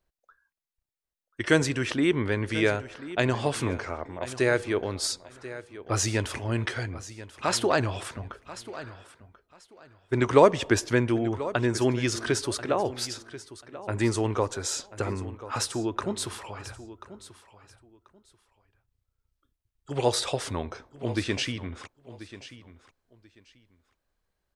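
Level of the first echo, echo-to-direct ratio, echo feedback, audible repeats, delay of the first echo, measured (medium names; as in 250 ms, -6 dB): -15.5 dB, -15.5 dB, 21%, 2, 1037 ms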